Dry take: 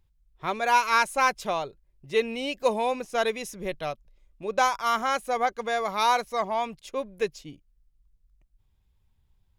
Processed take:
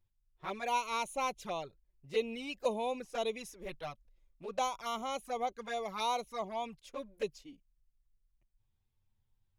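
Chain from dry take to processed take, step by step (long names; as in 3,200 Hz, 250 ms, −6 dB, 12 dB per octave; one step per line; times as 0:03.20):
flanger swept by the level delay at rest 9.3 ms, full sweep at −23 dBFS
level −7 dB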